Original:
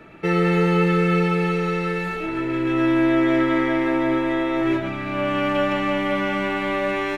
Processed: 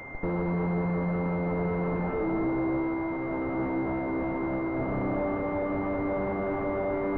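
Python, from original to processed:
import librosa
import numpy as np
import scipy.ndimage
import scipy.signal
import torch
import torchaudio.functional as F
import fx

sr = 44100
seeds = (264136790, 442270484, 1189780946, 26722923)

p1 = fx.schmitt(x, sr, flips_db=-34.0)
p2 = fx.dmg_noise_colour(p1, sr, seeds[0], colour='white', level_db=-34.0)
p3 = p2 + fx.echo_single(p2, sr, ms=242, db=-8.0, dry=0)
p4 = fx.pwm(p3, sr, carrier_hz=2100.0)
y = p4 * 10.0 ** (-6.5 / 20.0)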